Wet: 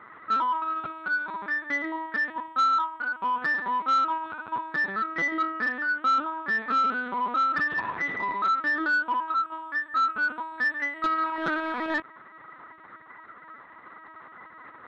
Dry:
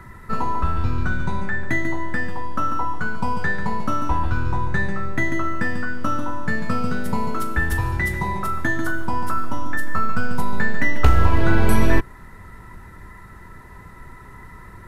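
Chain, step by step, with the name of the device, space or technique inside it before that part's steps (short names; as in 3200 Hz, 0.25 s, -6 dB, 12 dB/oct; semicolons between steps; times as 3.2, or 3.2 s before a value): talking toy (LPC vocoder at 8 kHz pitch kept; HPF 360 Hz 12 dB/oct; bell 1300 Hz +6.5 dB 0.47 oct; soft clip -14.5 dBFS, distortion -16 dB); 5.51–6.55 high shelf 5400 Hz -4.5 dB; gain -3.5 dB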